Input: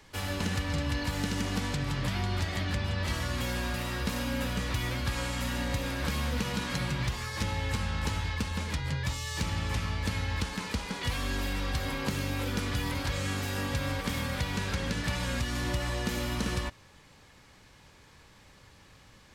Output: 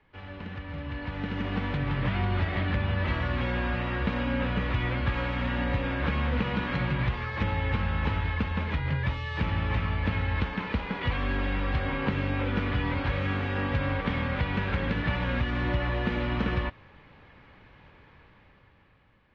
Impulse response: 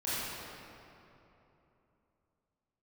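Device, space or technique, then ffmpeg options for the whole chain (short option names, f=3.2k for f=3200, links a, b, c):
action camera in a waterproof case: -af "lowpass=f=2.8k:w=0.5412,lowpass=f=2.8k:w=1.3066,dynaudnorm=f=380:g=7:m=12dB,volume=-8dB" -ar 32000 -c:a aac -b:a 48k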